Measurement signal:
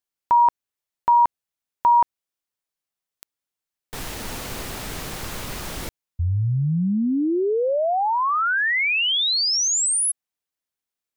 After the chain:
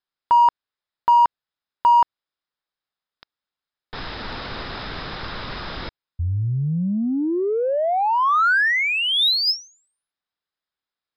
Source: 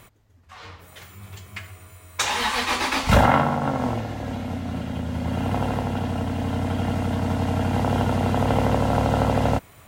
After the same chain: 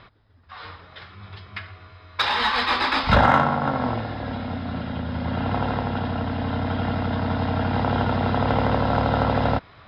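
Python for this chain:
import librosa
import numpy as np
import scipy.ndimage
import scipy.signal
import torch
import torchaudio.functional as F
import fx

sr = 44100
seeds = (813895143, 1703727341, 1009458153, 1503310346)

p1 = scipy.signal.sosfilt(scipy.signal.cheby1(6, 6, 5200.0, 'lowpass', fs=sr, output='sos'), x)
p2 = 10.0 ** (-24.5 / 20.0) * np.tanh(p1 / 10.0 ** (-24.5 / 20.0))
p3 = p1 + (p2 * 10.0 ** (-7.5 / 20.0))
y = p3 * 10.0 ** (2.5 / 20.0)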